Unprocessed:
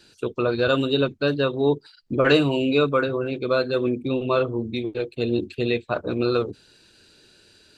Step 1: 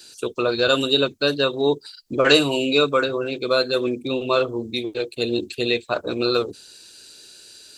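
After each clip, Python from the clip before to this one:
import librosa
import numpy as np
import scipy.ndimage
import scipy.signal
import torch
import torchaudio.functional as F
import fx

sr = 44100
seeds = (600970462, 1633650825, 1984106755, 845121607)

y = fx.bass_treble(x, sr, bass_db=-8, treble_db=15)
y = y * librosa.db_to_amplitude(2.0)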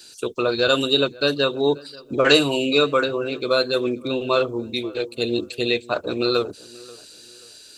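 y = fx.echo_filtered(x, sr, ms=534, feedback_pct=34, hz=2100.0, wet_db=-22.0)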